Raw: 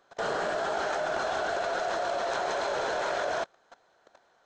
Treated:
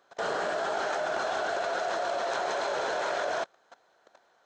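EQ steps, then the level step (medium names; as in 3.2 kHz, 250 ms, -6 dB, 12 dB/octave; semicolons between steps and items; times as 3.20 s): bass shelf 110 Hz -11 dB; 0.0 dB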